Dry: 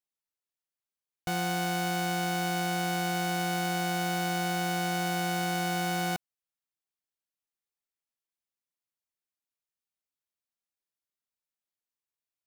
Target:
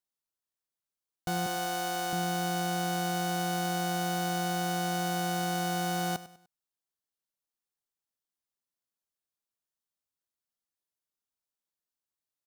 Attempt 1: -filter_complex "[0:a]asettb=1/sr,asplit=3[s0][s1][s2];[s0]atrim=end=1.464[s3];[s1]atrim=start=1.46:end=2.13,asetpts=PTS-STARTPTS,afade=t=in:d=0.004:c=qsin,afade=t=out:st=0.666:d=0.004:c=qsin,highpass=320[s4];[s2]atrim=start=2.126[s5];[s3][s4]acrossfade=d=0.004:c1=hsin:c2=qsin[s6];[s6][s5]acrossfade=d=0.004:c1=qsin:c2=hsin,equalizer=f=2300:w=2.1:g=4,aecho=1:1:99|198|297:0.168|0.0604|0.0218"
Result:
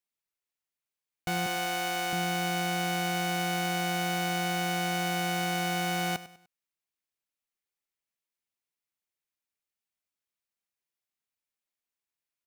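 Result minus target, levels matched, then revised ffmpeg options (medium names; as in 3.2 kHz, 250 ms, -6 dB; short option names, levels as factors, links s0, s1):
2 kHz band +3.0 dB
-filter_complex "[0:a]asettb=1/sr,asplit=3[s0][s1][s2];[s0]atrim=end=1.464[s3];[s1]atrim=start=1.46:end=2.13,asetpts=PTS-STARTPTS,afade=t=in:d=0.004:c=qsin,afade=t=out:st=0.666:d=0.004:c=qsin,highpass=320[s4];[s2]atrim=start=2.126[s5];[s3][s4]acrossfade=d=0.004:c1=hsin:c2=qsin[s6];[s6][s5]acrossfade=d=0.004:c1=qsin:c2=hsin,equalizer=f=2300:w=2.1:g=-7,aecho=1:1:99|198|297:0.168|0.0604|0.0218"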